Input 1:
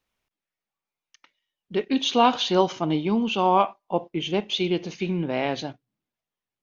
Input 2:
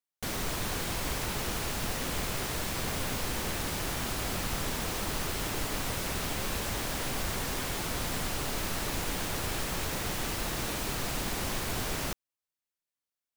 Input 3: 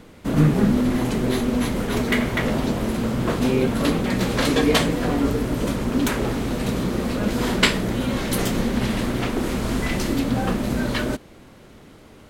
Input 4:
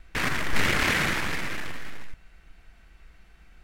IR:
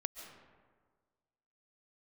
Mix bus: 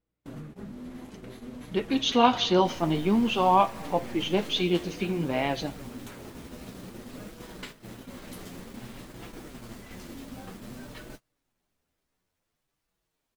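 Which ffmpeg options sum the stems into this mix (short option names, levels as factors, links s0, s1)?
-filter_complex "[0:a]aeval=exprs='val(0)+0.00224*(sin(2*PI*60*n/s)+sin(2*PI*2*60*n/s)/2+sin(2*PI*3*60*n/s)/3+sin(2*PI*4*60*n/s)/4+sin(2*PI*5*60*n/s)/5)':c=same,volume=1.12,asplit=2[s0][s1];[s1]volume=0.188[s2];[1:a]asoftclip=type=tanh:threshold=0.0133,asplit=2[s3][s4];[s4]adelay=9.3,afreqshift=-1.3[s5];[s3][s5]amix=inputs=2:normalize=1,adelay=2450,volume=0.562,asplit=2[s6][s7];[s7]volume=0.126[s8];[2:a]acompressor=threshold=0.0282:ratio=4,volume=0.355,asplit=2[s9][s10];[s10]volume=0.447[s11];[3:a]alimiter=limit=0.0794:level=0:latency=1,aeval=exprs='abs(val(0))':c=same,adelay=2500,volume=0.237[s12];[4:a]atrim=start_sample=2205[s13];[s2][s8][s11]amix=inputs=3:normalize=0[s14];[s14][s13]afir=irnorm=-1:irlink=0[s15];[s0][s6][s9][s12][s15]amix=inputs=5:normalize=0,flanger=delay=6:depth=6:regen=-30:speed=0.54:shape=sinusoidal,agate=range=0.0282:threshold=0.00794:ratio=16:detection=peak"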